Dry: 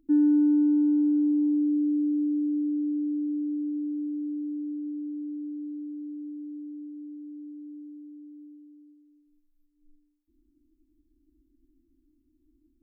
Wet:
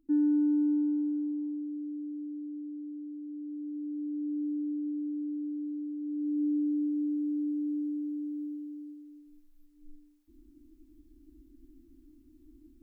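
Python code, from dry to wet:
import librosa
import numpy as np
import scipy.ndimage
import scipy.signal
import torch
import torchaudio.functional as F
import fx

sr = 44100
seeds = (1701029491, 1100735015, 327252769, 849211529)

y = fx.gain(x, sr, db=fx.line((0.72, -5.0), (1.68, -12.5), (3.21, -12.5), (4.43, 0.0), (5.99, 0.0), (6.44, 10.0)))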